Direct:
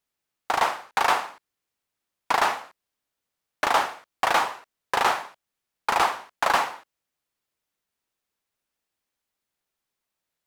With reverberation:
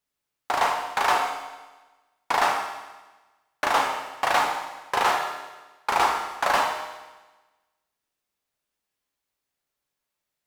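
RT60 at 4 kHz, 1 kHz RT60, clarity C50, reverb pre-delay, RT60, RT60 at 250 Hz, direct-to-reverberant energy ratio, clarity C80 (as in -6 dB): 1.2 s, 1.2 s, 5.0 dB, 6 ms, 1.2 s, 1.2 s, 1.5 dB, 6.5 dB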